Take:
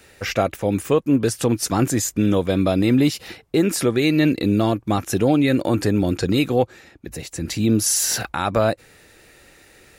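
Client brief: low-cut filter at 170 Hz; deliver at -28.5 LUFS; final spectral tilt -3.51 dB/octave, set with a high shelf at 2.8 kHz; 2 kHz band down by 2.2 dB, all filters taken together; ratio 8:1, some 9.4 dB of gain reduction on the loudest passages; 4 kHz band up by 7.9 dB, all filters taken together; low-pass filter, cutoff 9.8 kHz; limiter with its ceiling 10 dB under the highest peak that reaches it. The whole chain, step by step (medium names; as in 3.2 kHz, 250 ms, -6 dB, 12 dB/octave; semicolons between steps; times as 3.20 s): high-pass 170 Hz; low-pass 9.8 kHz; peaking EQ 2 kHz -8.5 dB; treble shelf 2.8 kHz +7.5 dB; peaking EQ 4 kHz +5.5 dB; compression 8:1, threshold -22 dBFS; trim +2 dB; peak limiter -18.5 dBFS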